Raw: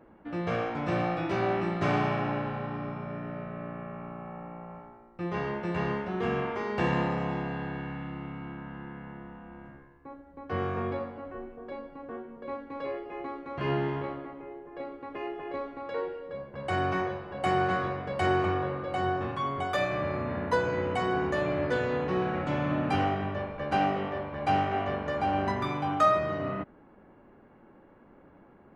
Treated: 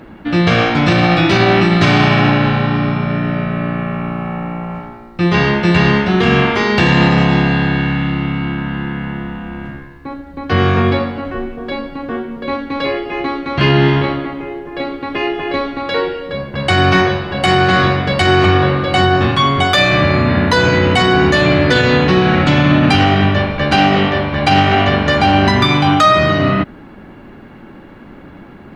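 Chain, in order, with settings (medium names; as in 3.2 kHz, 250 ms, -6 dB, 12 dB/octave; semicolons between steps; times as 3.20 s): ten-band graphic EQ 500 Hz -7 dB, 1 kHz -5 dB, 4 kHz +9 dB; loudness maximiser +23 dB; trim -1 dB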